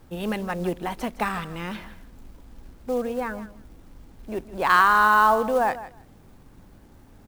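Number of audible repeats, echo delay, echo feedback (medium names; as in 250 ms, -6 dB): 2, 158 ms, 15%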